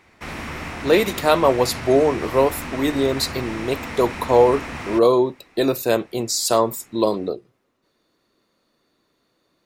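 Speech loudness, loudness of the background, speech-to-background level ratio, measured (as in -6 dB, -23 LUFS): -20.0 LUFS, -31.5 LUFS, 11.5 dB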